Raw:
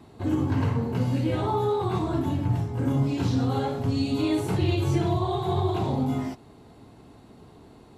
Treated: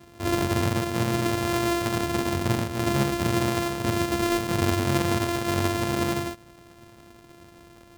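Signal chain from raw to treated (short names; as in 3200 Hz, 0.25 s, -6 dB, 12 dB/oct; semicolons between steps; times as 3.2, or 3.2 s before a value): sample sorter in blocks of 128 samples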